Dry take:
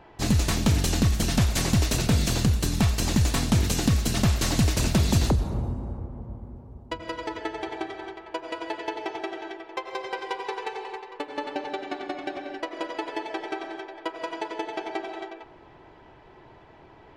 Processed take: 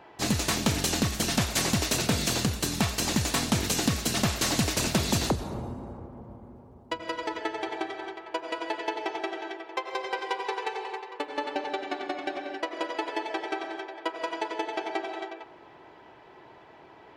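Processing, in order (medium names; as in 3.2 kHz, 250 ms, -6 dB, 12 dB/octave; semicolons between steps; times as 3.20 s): high-pass 310 Hz 6 dB/octave; trim +1.5 dB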